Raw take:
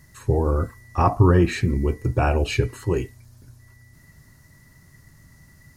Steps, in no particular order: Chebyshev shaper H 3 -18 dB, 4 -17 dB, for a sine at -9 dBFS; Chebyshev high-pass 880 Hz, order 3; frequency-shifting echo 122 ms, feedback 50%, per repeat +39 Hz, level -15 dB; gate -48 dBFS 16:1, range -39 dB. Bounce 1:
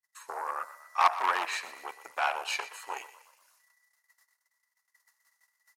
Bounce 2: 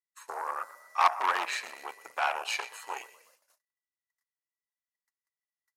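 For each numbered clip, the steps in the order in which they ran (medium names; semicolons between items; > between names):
gate > Chebyshev shaper > Chebyshev high-pass > frequency-shifting echo; frequency-shifting echo > Chebyshev shaper > gate > Chebyshev high-pass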